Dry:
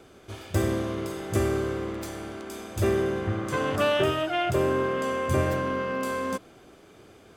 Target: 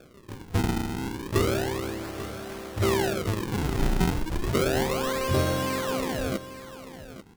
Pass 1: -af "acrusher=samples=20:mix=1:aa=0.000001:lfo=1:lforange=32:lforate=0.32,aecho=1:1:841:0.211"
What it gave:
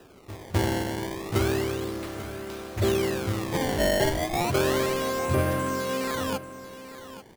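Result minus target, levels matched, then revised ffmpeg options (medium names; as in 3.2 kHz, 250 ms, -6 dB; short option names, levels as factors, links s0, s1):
decimation with a swept rate: distortion -6 dB
-af "acrusher=samples=44:mix=1:aa=0.000001:lfo=1:lforange=70.4:lforate=0.32,aecho=1:1:841:0.211"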